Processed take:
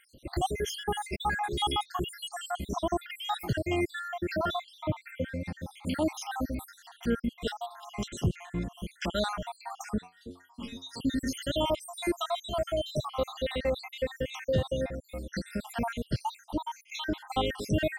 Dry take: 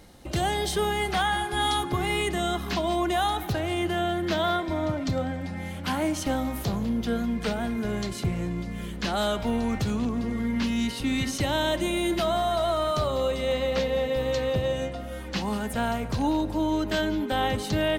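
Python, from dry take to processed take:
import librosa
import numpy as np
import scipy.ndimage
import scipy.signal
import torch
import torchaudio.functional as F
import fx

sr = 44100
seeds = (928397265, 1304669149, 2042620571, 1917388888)

y = fx.spec_dropout(x, sr, seeds[0], share_pct=71)
y = fx.stiff_resonator(y, sr, f0_hz=88.0, decay_s=0.24, stiffness=0.002, at=(10.01, 10.92), fade=0.02)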